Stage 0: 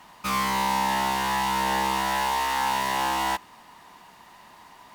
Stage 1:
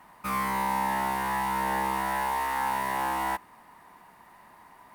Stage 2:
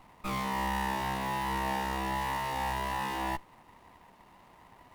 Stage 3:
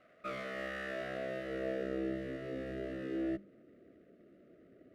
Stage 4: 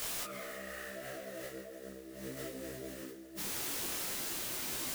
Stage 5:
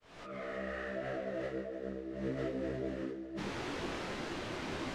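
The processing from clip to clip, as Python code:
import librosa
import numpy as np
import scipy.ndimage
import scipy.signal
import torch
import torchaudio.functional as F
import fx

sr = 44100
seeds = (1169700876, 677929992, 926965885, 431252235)

y1 = fx.band_shelf(x, sr, hz=4500.0, db=-9.5, octaves=1.7)
y1 = y1 * 10.0 ** (-3.0 / 20.0)
y2 = fx.running_max(y1, sr, window=17)
y2 = y2 * 10.0 ** (-1.5 / 20.0)
y3 = scipy.signal.sosfilt(scipy.signal.ellip(3, 1.0, 80, [640.0, 1300.0], 'bandstop', fs=sr, output='sos'), y2)
y3 = fx.hum_notches(y3, sr, base_hz=50, count=4)
y3 = fx.filter_sweep_bandpass(y3, sr, from_hz=850.0, to_hz=350.0, start_s=0.85, end_s=2.22, q=1.9)
y3 = y3 * 10.0 ** (8.0 / 20.0)
y4 = fx.quant_dither(y3, sr, seeds[0], bits=8, dither='triangular')
y4 = fx.over_compress(y4, sr, threshold_db=-47.0, ratio=-1.0)
y4 = fx.detune_double(y4, sr, cents=27)
y4 = y4 * 10.0 ** (8.0 / 20.0)
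y5 = fx.fade_in_head(y4, sr, length_s=0.59)
y5 = fx.spacing_loss(y5, sr, db_at_10k=34)
y5 = y5 * 10.0 ** (8.5 / 20.0)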